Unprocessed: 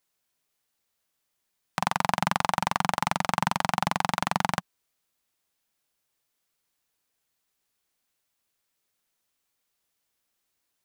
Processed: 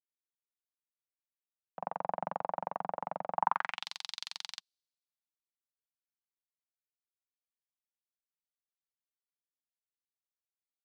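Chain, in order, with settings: band-pass sweep 550 Hz -> 4200 Hz, 3.32–3.88; three-band expander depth 70%; gain -1.5 dB

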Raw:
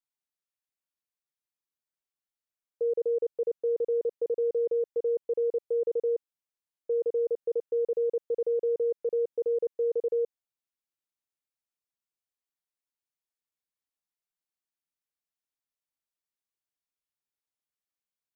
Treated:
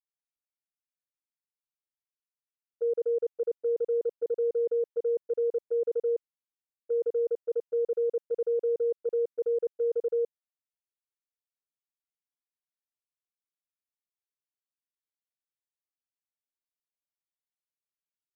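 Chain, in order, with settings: gate -30 dBFS, range -13 dB

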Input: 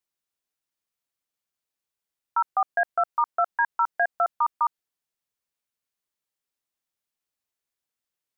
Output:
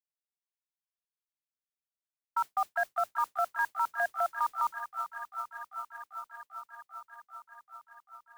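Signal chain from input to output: gate -31 dBFS, range -15 dB; Chebyshev band-stop 190–610 Hz, order 4; thin delay 0.393 s, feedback 80%, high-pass 1500 Hz, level -11 dB; modulation noise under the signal 23 dB; limiter -20.5 dBFS, peak gain reduction 7 dB

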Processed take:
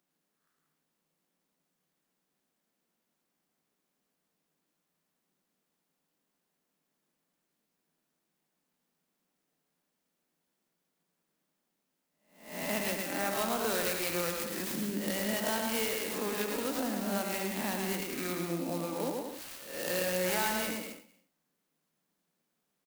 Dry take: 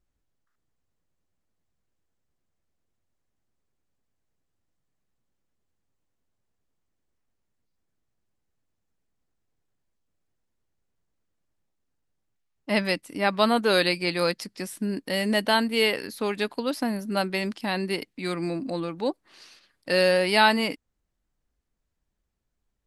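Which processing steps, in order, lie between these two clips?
spectral swells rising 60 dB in 0.54 s; Chebyshev high-pass 150 Hz, order 8; high shelf 5900 Hz +10 dB; compressor 2.5:1, threshold -37 dBFS, peak gain reduction 16 dB; bouncing-ball echo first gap 0.11 s, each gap 0.7×, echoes 5; on a send at -22.5 dB: reverb, pre-delay 0.139 s; on the sum: clock jitter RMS 0.058 ms

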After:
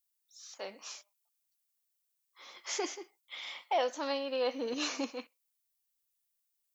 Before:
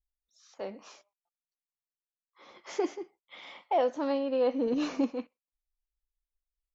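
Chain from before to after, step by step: tilt +4.5 dB/oct; gain -1 dB

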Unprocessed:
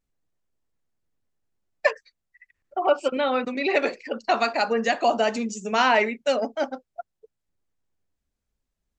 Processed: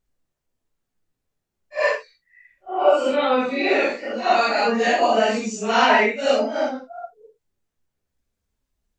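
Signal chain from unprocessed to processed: phase scrambler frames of 0.2 s; gain +4 dB

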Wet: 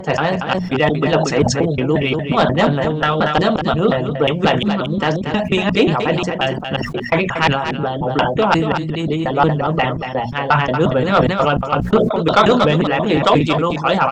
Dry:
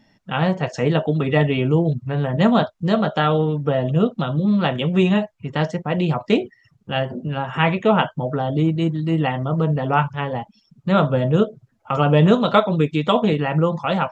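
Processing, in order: slices in reverse order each 0.178 s, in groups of 4; notches 60/120/180/240 Hz; harmonic-percussive split harmonic -11 dB; sine folder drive 5 dB, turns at -3.5 dBFS; on a send: echo 0.233 s -8.5 dB; on the sum: sustainer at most 58 dB/s; gain -1 dB

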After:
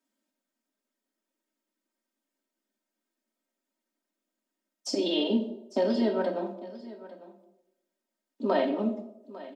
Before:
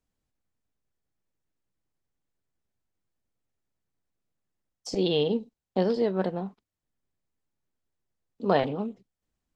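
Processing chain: elliptic high-pass 200 Hz, stop band 40 dB; notch 1100 Hz, Q 19; comb 3.2 ms, depth 94%; compressor 2.5:1, threshold -25 dBFS, peak gain reduction 7 dB; echo 0.85 s -17.5 dB; reverb RT60 0.90 s, pre-delay 4 ms, DRR 3 dB

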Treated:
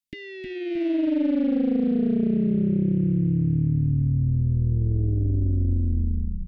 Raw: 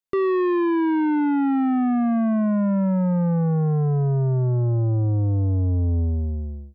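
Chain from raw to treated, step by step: Chebyshev band-stop 310–1900 Hz, order 5; bell 1200 Hz -10.5 dB 1 oct; compressor, threshold -23 dBFS, peak gain reduction 4 dB; on a send: frequency-shifting echo 0.324 s, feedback 43%, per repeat -49 Hz, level -5 dB; on the sum: speed mistake 24 fps film run at 25 fps; Doppler distortion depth 0.61 ms; gain +2 dB

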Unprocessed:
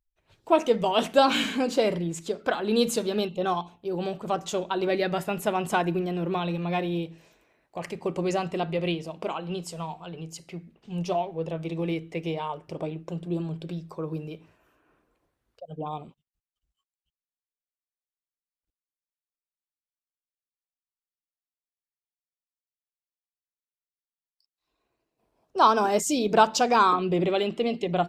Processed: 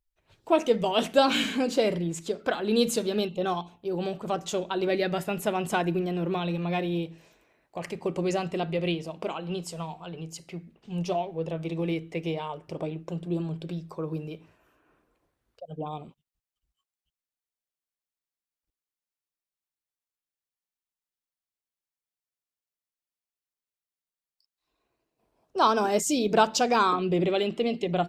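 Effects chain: dynamic EQ 1000 Hz, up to -4 dB, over -37 dBFS, Q 1.4

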